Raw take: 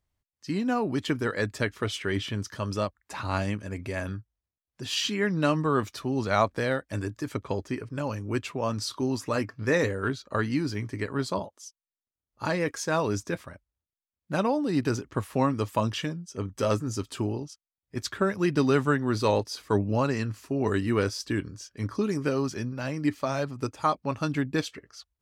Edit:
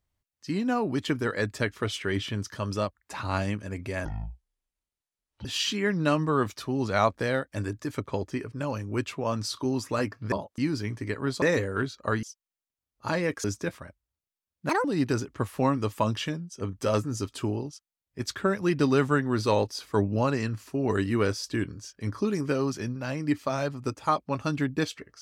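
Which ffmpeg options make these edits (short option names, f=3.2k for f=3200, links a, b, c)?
-filter_complex "[0:a]asplit=10[a][b][c][d][e][f][g][h][i][j];[a]atrim=end=4.054[k];[b]atrim=start=4.05:end=4.82,asetpts=PTS-STARTPTS,asetrate=24255,aresample=44100[l];[c]atrim=start=4.816:end=9.692[m];[d]atrim=start=11.338:end=11.602[n];[e]atrim=start=10.498:end=11.342[o];[f]atrim=start=9.688:end=10.502[p];[g]atrim=start=11.598:end=12.812[q];[h]atrim=start=13.098:end=14.354[r];[i]atrim=start=14.35:end=14.61,asetpts=PTS-STARTPTS,asetrate=74088,aresample=44100[s];[j]atrim=start=14.606[t];[k][l]acrossfade=d=0.004:c1=hsin:c2=hsin[u];[u][m]acrossfade=d=0.004:c1=hsin:c2=hsin[v];[v][n]acrossfade=d=0.004:c1=hsin:c2=hsin[w];[w][o]acrossfade=d=0.004:c1=hsin:c2=hsin[x];[x][p]acrossfade=d=0.004:c1=hsin:c2=hsin[y];[y][q]acrossfade=d=0.004:c1=hsin:c2=hsin[z];[z][r]acrossfade=d=0.004:c1=hsin:c2=hsin[aa];[aa][s]acrossfade=d=0.004:c1=hsin:c2=hsin[ab];[ab][t]acrossfade=d=0.004:c1=hsin:c2=hsin"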